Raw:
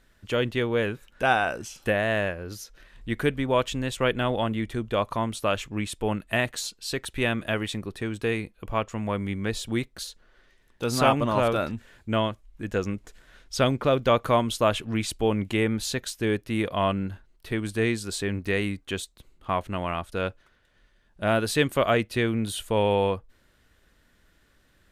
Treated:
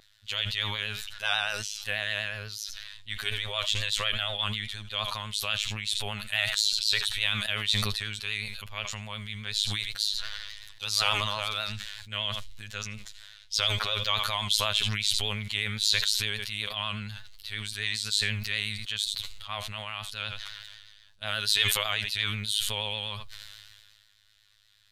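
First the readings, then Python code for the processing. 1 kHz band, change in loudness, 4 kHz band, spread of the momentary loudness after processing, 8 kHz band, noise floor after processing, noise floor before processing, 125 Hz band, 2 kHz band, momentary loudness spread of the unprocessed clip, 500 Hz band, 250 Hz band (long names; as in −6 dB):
−8.5 dB, −2.0 dB, +9.0 dB, 13 LU, +3.5 dB, −60 dBFS, −63 dBFS, −7.0 dB, −0.5 dB, 10 LU, −16.5 dB, −17.0 dB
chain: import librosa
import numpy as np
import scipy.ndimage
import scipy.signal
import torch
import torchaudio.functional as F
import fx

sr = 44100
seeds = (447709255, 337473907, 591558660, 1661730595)

y = fx.tone_stack(x, sr, knobs='10-0-10')
y = fx.robotise(y, sr, hz=105.0)
y = fx.peak_eq(y, sr, hz=3900.0, db=13.0, octaves=1.0)
y = y + 10.0 ** (-22.0 / 20.0) * np.pad(y, (int(81 * sr / 1000.0), 0))[:len(y)]
y = fx.vibrato(y, sr, rate_hz=8.2, depth_cents=55.0)
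y = fx.sustainer(y, sr, db_per_s=29.0)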